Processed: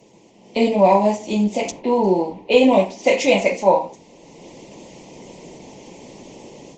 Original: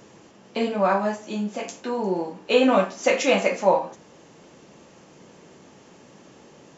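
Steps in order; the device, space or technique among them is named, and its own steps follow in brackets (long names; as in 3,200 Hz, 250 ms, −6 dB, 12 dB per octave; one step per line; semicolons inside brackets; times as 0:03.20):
elliptic band-stop filter 1,000–2,000 Hz, stop band 60 dB
0:01.71–0:03.55: low-pass that shuts in the quiet parts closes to 1,900 Hz, open at −16.5 dBFS
video call (high-pass filter 130 Hz 12 dB per octave; automatic gain control gain up to 11.5 dB; Opus 16 kbit/s 48,000 Hz)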